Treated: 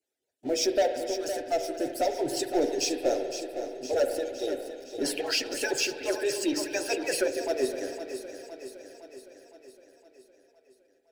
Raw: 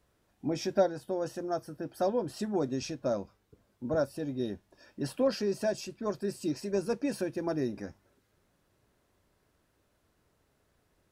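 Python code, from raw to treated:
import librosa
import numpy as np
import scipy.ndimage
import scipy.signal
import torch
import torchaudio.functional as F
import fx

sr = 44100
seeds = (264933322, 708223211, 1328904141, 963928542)

y = fx.hpss_only(x, sr, part='percussive')
y = scipy.signal.sosfilt(scipy.signal.butter(2, 180.0, 'highpass', fs=sr, output='sos'), y)
y = fx.peak_eq(y, sr, hz=7500.0, db=4.0, octaves=0.77)
y = fx.hum_notches(y, sr, base_hz=60, count=9)
y = fx.leveller(y, sr, passes=3)
y = fx.fixed_phaser(y, sr, hz=460.0, stages=4)
y = fx.echo_feedback(y, sr, ms=512, feedback_pct=58, wet_db=-10)
y = fx.rev_spring(y, sr, rt60_s=2.2, pass_ms=(47,), chirp_ms=25, drr_db=7.0)
y = fx.bell_lfo(y, sr, hz=4.5, low_hz=970.0, high_hz=2800.0, db=12, at=(5.05, 7.28))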